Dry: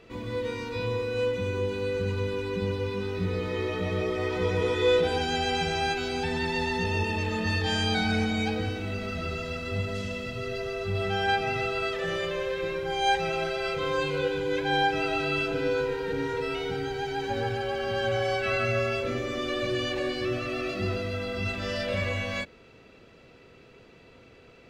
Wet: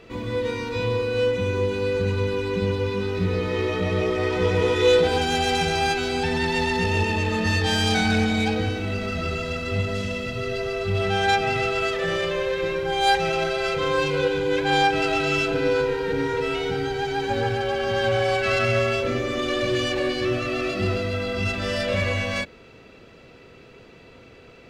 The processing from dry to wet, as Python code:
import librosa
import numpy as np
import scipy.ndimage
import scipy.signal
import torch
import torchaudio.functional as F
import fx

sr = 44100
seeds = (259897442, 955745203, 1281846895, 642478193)

y = fx.self_delay(x, sr, depth_ms=0.1)
y = y * 10.0 ** (5.5 / 20.0)